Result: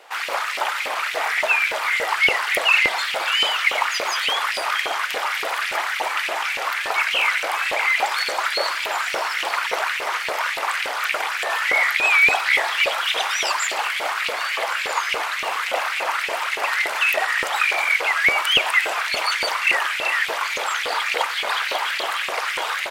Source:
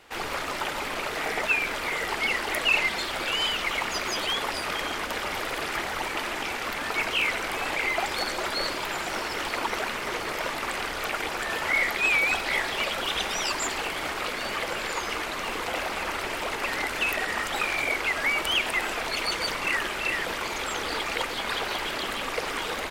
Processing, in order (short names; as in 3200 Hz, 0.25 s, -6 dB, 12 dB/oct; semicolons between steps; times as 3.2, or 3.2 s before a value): LFO high-pass saw up 3.5 Hz 480–2600 Hz; gain +4 dB